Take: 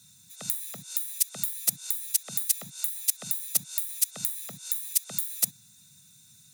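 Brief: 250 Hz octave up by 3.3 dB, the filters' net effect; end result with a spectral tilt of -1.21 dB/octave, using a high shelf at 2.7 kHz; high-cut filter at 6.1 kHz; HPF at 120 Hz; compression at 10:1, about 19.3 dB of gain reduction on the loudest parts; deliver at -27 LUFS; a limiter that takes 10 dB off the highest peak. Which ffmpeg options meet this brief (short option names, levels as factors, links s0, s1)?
-af "highpass=120,lowpass=6100,equalizer=f=250:t=o:g=5.5,highshelf=f=2700:g=8.5,acompressor=threshold=0.00891:ratio=10,volume=9.44,alimiter=limit=0.15:level=0:latency=1"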